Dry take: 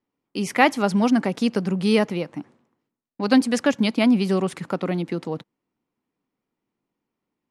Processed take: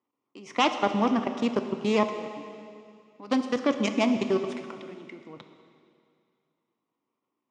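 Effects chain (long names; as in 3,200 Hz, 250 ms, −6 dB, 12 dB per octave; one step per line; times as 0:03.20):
phase distortion by the signal itself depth 0.24 ms
gain on a spectral selection 0:04.33–0:05.34, 420–1,400 Hz −7 dB
output level in coarse steps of 21 dB
loudspeaker in its box 150–6,300 Hz, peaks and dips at 180 Hz −9 dB, 1,100 Hz +9 dB, 1,600 Hz −7 dB, 4,400 Hz −8 dB
dense smooth reverb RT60 2.4 s, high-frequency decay 0.95×, DRR 7 dB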